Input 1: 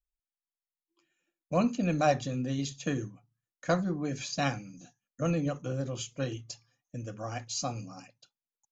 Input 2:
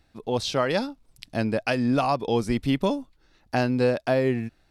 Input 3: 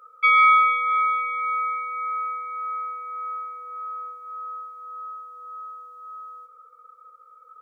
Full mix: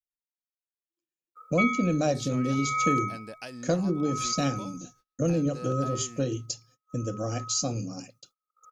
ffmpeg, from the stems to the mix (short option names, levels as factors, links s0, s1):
-filter_complex "[0:a]lowshelf=f=630:t=q:w=1.5:g=9.5,volume=1.06[s0];[1:a]acompressor=threshold=0.0501:ratio=2,adelay=1750,volume=0.211[s1];[2:a]equalizer=f=2000:w=0.71:g=3.5,aeval=exprs='val(0)*pow(10,-31*(0.5-0.5*cos(2*PI*0.67*n/s))/20)':c=same,adelay=1350,volume=0.708[s2];[s0][s1]amix=inputs=2:normalize=0,bass=f=250:g=-2,treble=f=4000:g=12,acompressor=threshold=0.0447:ratio=2,volume=1[s3];[s2][s3]amix=inputs=2:normalize=0,agate=range=0.0355:threshold=0.00141:ratio=16:detection=peak"